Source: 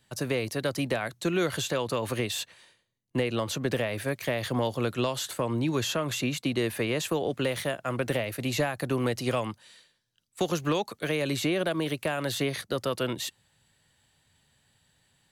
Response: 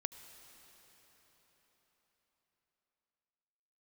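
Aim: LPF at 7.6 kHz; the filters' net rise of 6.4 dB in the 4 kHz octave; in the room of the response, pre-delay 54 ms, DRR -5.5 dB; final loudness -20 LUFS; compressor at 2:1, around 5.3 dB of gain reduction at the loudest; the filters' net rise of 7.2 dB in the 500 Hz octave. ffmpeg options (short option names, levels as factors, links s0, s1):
-filter_complex "[0:a]lowpass=7600,equalizer=f=500:t=o:g=8.5,equalizer=f=4000:t=o:g=8,acompressor=threshold=0.0447:ratio=2,asplit=2[s0][s1];[1:a]atrim=start_sample=2205,adelay=54[s2];[s1][s2]afir=irnorm=-1:irlink=0,volume=2.24[s3];[s0][s3]amix=inputs=2:normalize=0,volume=1.26"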